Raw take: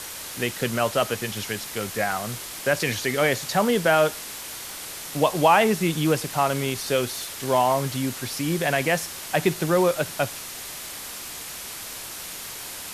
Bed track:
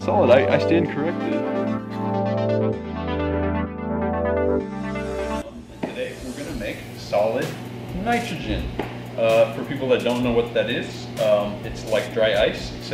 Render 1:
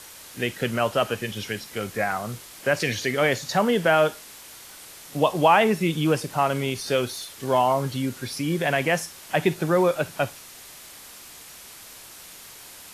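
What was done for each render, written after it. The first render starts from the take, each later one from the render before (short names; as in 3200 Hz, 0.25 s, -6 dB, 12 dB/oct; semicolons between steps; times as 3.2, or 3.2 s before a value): noise print and reduce 8 dB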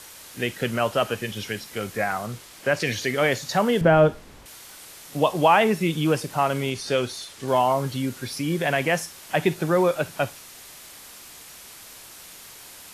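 2.26–2.87 high shelf 8800 Hz -6 dB; 3.81–4.46 tilt -4 dB/oct; 6.7–7.48 LPF 9500 Hz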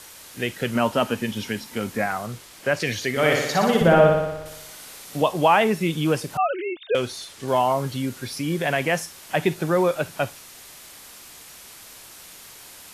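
0.75–2.06 small resonant body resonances 240/910 Hz, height 10 dB; 3.1–5.22 flutter echo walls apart 10.2 m, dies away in 0.98 s; 6.37–6.95 sine-wave speech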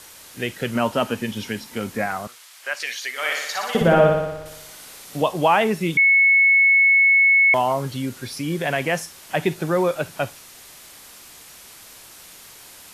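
2.27–3.75 HPF 1100 Hz; 5.97–7.54 bleep 2200 Hz -11.5 dBFS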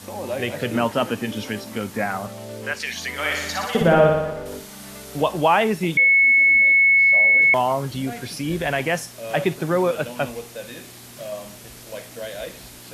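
add bed track -14 dB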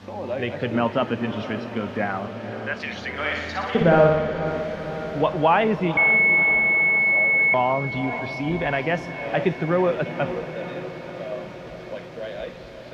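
air absorption 240 m; diffused feedback echo 0.5 s, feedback 70%, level -11 dB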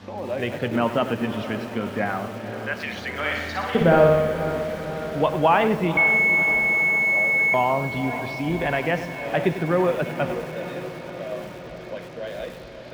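lo-fi delay 98 ms, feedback 35%, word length 6-bit, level -11.5 dB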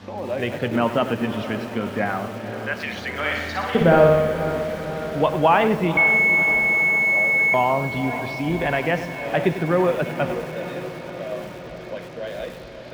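gain +1.5 dB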